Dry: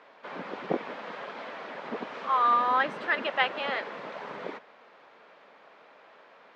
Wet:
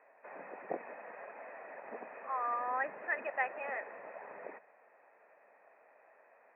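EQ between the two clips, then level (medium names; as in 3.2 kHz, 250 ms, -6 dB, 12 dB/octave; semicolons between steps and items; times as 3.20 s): rippled Chebyshev low-pass 2.6 kHz, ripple 9 dB; bass shelf 180 Hz -10.5 dB; hum notches 60/120/180/240 Hz; -4.5 dB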